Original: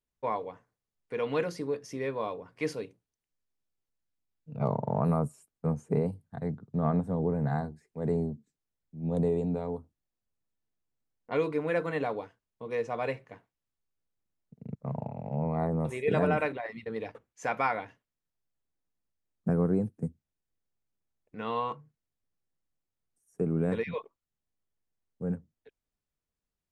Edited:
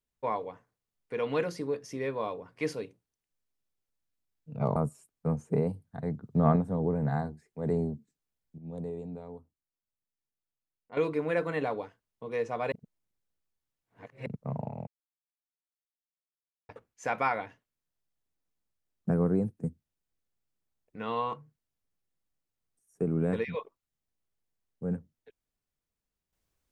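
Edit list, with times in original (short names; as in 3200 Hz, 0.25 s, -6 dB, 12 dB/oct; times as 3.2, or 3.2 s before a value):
4.76–5.15 cut
6.62–6.95 gain +4.5 dB
8.97–11.36 gain -10 dB
13.11–14.65 reverse
15.26–17.08 mute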